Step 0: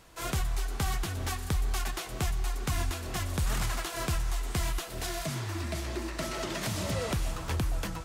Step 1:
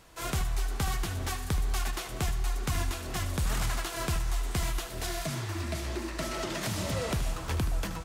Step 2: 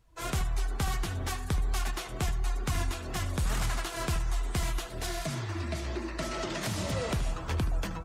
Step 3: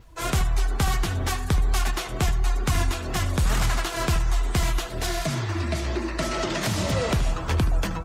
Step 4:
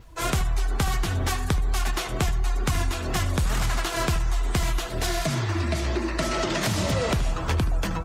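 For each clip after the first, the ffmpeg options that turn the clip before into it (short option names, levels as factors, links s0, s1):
-af "aecho=1:1:76:0.266"
-af "afftdn=nr=18:nf=-48"
-af "acompressor=mode=upward:threshold=0.00316:ratio=2.5,adynamicequalizer=threshold=0.00126:dfrequency=9700:dqfactor=1.9:tfrequency=9700:tqfactor=1.9:attack=5:release=100:ratio=0.375:range=2:mode=cutabove:tftype=bell,volume=2.37"
-af "acompressor=threshold=0.0794:ratio=6,volume=1.26"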